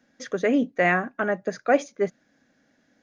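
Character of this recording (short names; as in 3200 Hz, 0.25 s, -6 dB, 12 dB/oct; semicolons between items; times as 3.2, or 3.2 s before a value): noise floor -67 dBFS; spectral tilt -1.0 dB/oct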